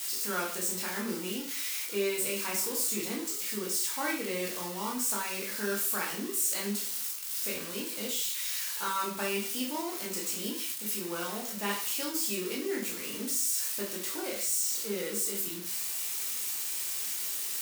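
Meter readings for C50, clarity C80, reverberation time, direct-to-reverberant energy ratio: 6.5 dB, 10.5 dB, 0.40 s, -3.0 dB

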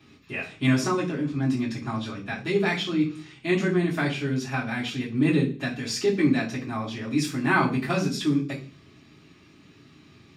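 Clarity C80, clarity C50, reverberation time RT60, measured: 14.5 dB, 10.5 dB, 0.40 s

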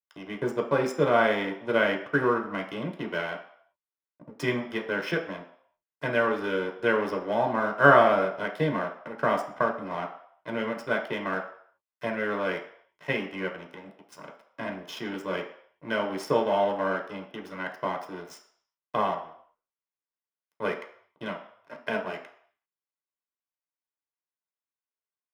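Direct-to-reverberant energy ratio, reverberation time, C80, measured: 2.0 dB, 0.65 s, 12.5 dB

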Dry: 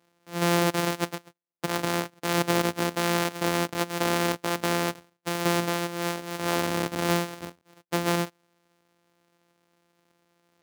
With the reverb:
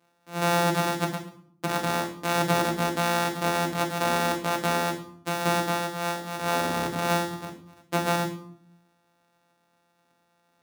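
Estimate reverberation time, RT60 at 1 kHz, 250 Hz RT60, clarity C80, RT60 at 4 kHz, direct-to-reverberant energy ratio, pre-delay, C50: 0.60 s, 0.55 s, 1.0 s, 12.0 dB, 0.45 s, 0.0 dB, 3 ms, 8.0 dB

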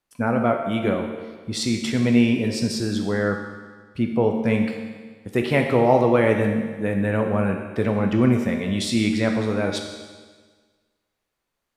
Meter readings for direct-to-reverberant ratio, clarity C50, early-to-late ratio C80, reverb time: 3.0 dB, 5.0 dB, 6.5 dB, 1.5 s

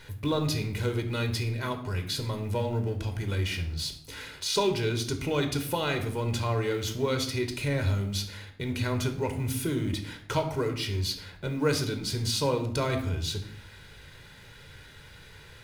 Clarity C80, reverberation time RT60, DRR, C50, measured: 13.0 dB, 0.60 s, 6.0 dB, 10.0 dB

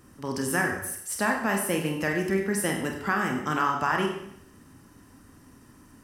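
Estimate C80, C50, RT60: 8.0 dB, 6.0 dB, 0.70 s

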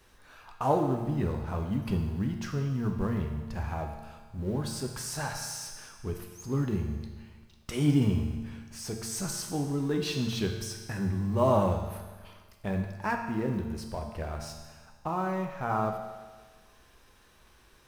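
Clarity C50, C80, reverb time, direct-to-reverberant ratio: 5.5 dB, 7.0 dB, 1.4 s, 3.0 dB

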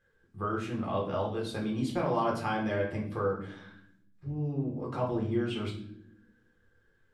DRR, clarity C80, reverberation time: -2.5 dB, 11.0 dB, not exponential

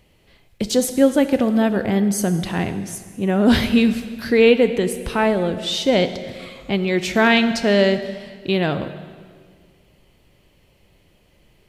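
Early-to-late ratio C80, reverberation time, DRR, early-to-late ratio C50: 12.0 dB, 1.9 s, 10.0 dB, 11.0 dB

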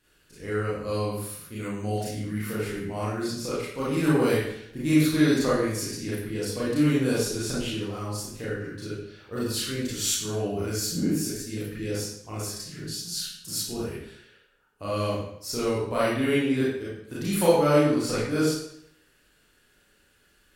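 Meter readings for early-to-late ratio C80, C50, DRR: 3.5 dB, -0.5 dB, -9.0 dB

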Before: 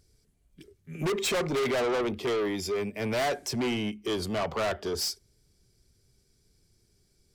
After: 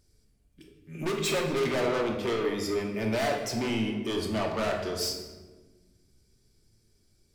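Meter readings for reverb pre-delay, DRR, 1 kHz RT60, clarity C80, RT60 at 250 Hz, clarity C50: 3 ms, 1.0 dB, 1.2 s, 7.0 dB, 2.0 s, 4.5 dB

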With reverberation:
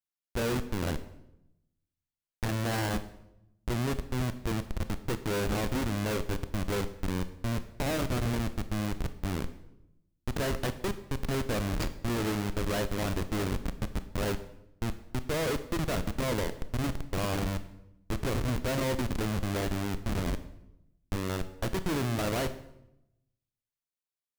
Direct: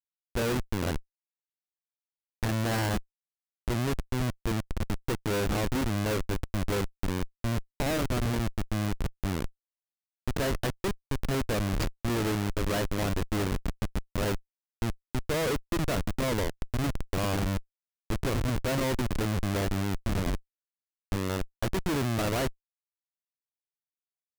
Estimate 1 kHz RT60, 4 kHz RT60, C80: 0.75 s, 0.65 s, 16.0 dB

